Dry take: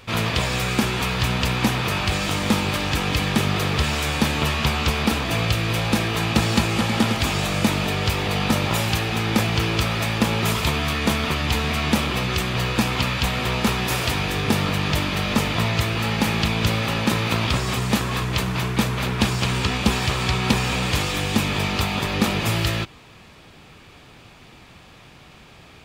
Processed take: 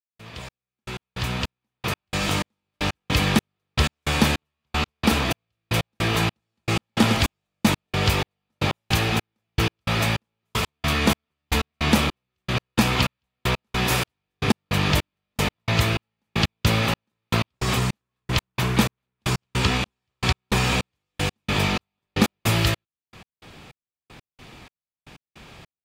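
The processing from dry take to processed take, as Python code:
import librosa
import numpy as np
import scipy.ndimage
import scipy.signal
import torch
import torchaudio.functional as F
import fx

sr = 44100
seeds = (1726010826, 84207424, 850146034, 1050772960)

y = fx.fade_in_head(x, sr, length_s=2.69)
y = fx.step_gate(y, sr, bpm=155, pattern='..xxx....x', floor_db=-60.0, edge_ms=4.5)
y = F.gain(torch.from_numpy(y), 1.5).numpy()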